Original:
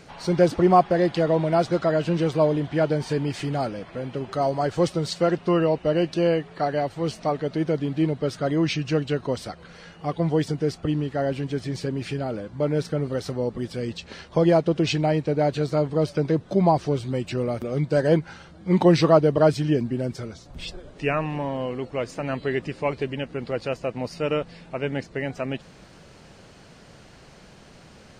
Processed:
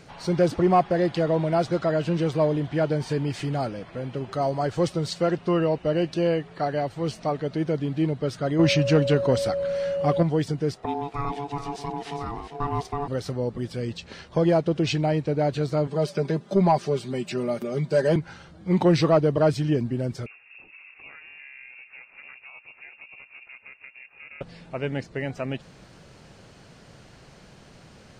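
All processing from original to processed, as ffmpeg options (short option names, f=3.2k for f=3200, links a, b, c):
-filter_complex "[0:a]asettb=1/sr,asplit=3[a][b][c];[a]atrim=end=8.594[d];[b]atrim=start=8.59:end=10.23,asetpts=PTS-STARTPTS,afade=t=in:d=0.004:c=qsin,afade=t=out:st=1.636:d=0.004:c=qsin,aeval=exprs='val(0)+0.0398*sin(2*PI*560*n/s)':c=same,acontrast=57[e];[c]atrim=start=10.226[f];[d][e]acrossfade=d=0.004:c1=hsin:c2=qsin[g];[g][f]acrossfade=d=0.004:c1=qsin:c2=hsin,asettb=1/sr,asplit=3[h][i][j];[h]atrim=end=10.744[k];[i]atrim=start=10.74:end=13.08,asetpts=PTS-STARTPTS,afade=t=in:d=0.004:c=qsin,afade=t=out:st=2.336:d=0.004:c=qsin,aecho=1:1:399:0.335,atrim=end_sample=103194,aeval=exprs='val(0)*sin(2*PI*570*n/s)':c=same[l];[j]atrim=start=13.076[m];[k][l]acrossfade=d=0.004:c1=hsin:c2=qsin[n];[n][m]acrossfade=d=0.004:c1=qsin:c2=hsin,asettb=1/sr,asplit=3[o][p][q];[o]atrim=end=15.874[r];[p]atrim=start=15.87:end=18.16,asetpts=PTS-STARTPTS,afade=t=in:d=0.004:c=qsin,afade=t=out:st=2.286:d=0.004:c=qsin,highpass=160,highshelf=f=5.3k:g=3.5,aecho=1:1:5:0.62,atrim=end_sample=100989[s];[q]atrim=start=18.156[t];[r][s]acrossfade=d=0.004:c1=hsin:c2=qsin[u];[u][t]acrossfade=d=0.004:c1=qsin:c2=hsin,asettb=1/sr,asplit=3[v][w][x];[v]atrim=end=20.264[y];[w]atrim=start=20.26:end=24.41,asetpts=PTS-STARTPTS,afade=t=in:d=0.004:c=qsin,afade=t=out:st=4.146:d=0.004:c=qsin,acompressor=threshold=-38dB:ratio=6:attack=3.2:release=140:knee=1:detection=peak,aeval=exprs='val(0)*sin(2*PI*170*n/s)':c=same,lowpass=f=2.4k:t=q:w=0.5098,lowpass=f=2.4k:t=q:w=0.6013,lowpass=f=2.4k:t=q:w=0.9,lowpass=f=2.4k:t=q:w=2.563,afreqshift=-2800[z];[x]atrim=start=24.406[aa];[y][z]acrossfade=d=0.004:c1=hsin:c2=qsin[ab];[ab][aa]acrossfade=d=0.004:c1=qsin:c2=hsin,acontrast=46,equalizer=f=120:w=2.2:g=3.5,volume=-7.5dB"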